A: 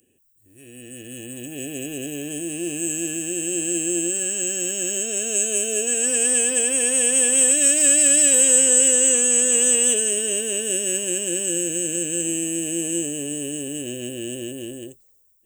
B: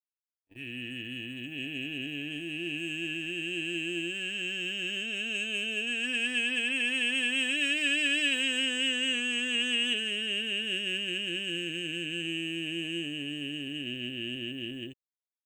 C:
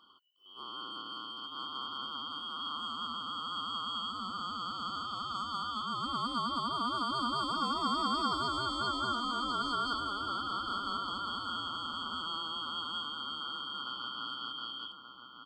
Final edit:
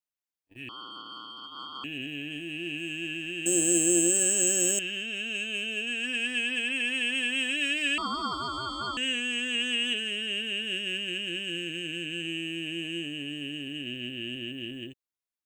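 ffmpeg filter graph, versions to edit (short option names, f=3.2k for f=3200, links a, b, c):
-filter_complex "[2:a]asplit=2[a][b];[1:a]asplit=4[c][d][e][f];[c]atrim=end=0.692[g];[a]atrim=start=0.688:end=1.842[h];[d]atrim=start=1.838:end=3.462[i];[0:a]atrim=start=3.458:end=4.792[j];[e]atrim=start=4.788:end=7.982[k];[b]atrim=start=7.978:end=8.972[l];[f]atrim=start=8.968[m];[g][h]acrossfade=d=0.004:c1=hsin:c2=hsin[n];[n][i]acrossfade=d=0.004:c1=hsin:c2=hsin[o];[o][j]acrossfade=d=0.004:c1=hsin:c2=hsin[p];[p][k]acrossfade=d=0.004:c1=hsin:c2=hsin[q];[q][l]acrossfade=d=0.004:c1=hsin:c2=hsin[r];[r][m]acrossfade=d=0.004:c1=hsin:c2=hsin"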